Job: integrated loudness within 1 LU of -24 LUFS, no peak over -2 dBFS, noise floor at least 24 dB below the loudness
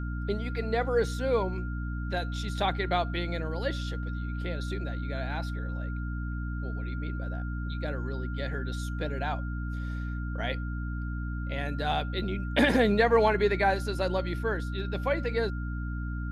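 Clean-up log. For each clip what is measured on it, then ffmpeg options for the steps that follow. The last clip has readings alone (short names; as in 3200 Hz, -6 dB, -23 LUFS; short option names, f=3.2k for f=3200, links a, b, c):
hum 60 Hz; harmonics up to 300 Hz; hum level -31 dBFS; steady tone 1400 Hz; tone level -43 dBFS; loudness -30.5 LUFS; peak -11.0 dBFS; loudness target -24.0 LUFS
-> -af "bandreject=f=60:t=h:w=4,bandreject=f=120:t=h:w=4,bandreject=f=180:t=h:w=4,bandreject=f=240:t=h:w=4,bandreject=f=300:t=h:w=4"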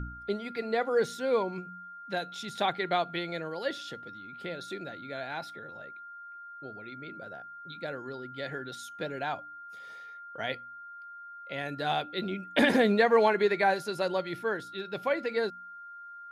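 hum none; steady tone 1400 Hz; tone level -43 dBFS
-> -af "bandreject=f=1.4k:w=30"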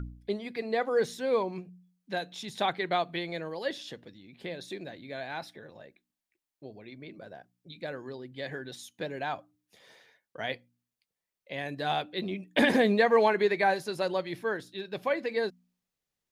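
steady tone none; loudness -30.5 LUFS; peak -11.0 dBFS; loudness target -24.0 LUFS
-> -af "volume=6.5dB"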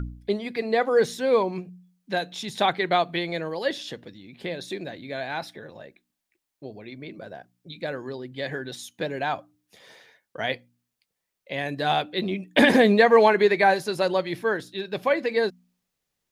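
loudness -24.0 LUFS; peak -4.5 dBFS; noise floor -82 dBFS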